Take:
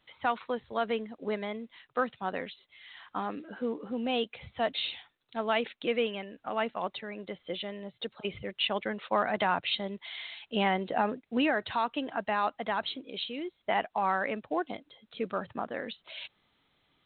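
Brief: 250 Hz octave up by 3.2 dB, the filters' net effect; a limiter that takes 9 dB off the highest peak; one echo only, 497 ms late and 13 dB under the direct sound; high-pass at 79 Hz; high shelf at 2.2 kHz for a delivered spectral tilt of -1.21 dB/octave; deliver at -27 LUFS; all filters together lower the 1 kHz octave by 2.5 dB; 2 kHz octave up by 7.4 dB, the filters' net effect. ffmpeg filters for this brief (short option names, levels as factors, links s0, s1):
-af "highpass=79,equalizer=f=250:t=o:g=4,equalizer=f=1000:t=o:g=-7,equalizer=f=2000:t=o:g=7.5,highshelf=f=2200:g=7,alimiter=limit=0.112:level=0:latency=1,aecho=1:1:497:0.224,volume=1.78"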